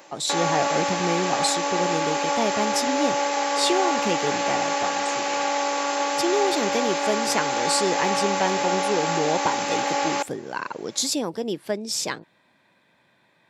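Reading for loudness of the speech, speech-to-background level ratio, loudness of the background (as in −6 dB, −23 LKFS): −27.0 LKFS, −3.0 dB, −24.0 LKFS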